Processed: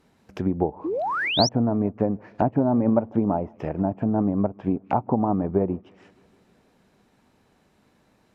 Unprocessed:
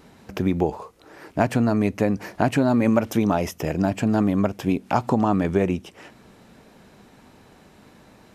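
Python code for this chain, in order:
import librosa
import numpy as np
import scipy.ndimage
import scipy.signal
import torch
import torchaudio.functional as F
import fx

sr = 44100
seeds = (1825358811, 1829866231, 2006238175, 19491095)

y = fx.echo_bbd(x, sr, ms=156, stages=4096, feedback_pct=69, wet_db=-22.0)
y = fx.dynamic_eq(y, sr, hz=870.0, q=1.8, threshold_db=-37.0, ratio=4.0, max_db=6)
y = fx.env_lowpass_down(y, sr, base_hz=700.0, full_db=-18.0)
y = fx.spec_paint(y, sr, seeds[0], shape='rise', start_s=0.84, length_s=0.65, low_hz=290.0, high_hz=6100.0, level_db=-22.0)
y = fx.upward_expand(y, sr, threshold_db=-38.0, expansion=1.5)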